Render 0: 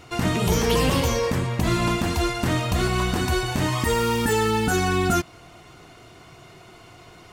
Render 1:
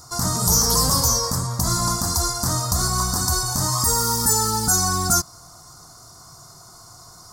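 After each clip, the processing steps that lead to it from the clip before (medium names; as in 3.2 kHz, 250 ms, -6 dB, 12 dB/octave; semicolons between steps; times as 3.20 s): FFT filter 150 Hz 0 dB, 380 Hz -10 dB, 1.2 kHz +5 dB, 2.7 kHz -26 dB, 4.9 kHz +14 dB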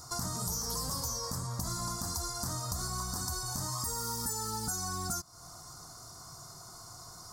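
compression 5:1, threshold -30 dBFS, peak gain reduction 14.5 dB; trim -4 dB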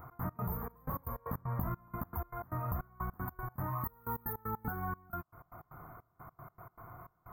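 trance gate "x.x.xxx..x." 155 bpm -24 dB; brick-wall FIR band-stop 2.5–13 kHz; trim +2 dB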